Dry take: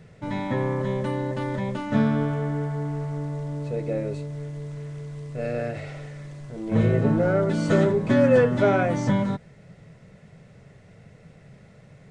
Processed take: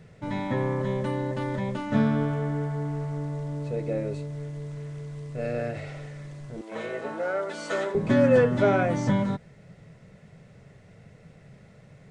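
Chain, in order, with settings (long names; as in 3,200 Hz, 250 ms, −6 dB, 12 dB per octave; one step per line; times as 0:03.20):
0:06.61–0:07.95: high-pass filter 620 Hz 12 dB per octave
level −1.5 dB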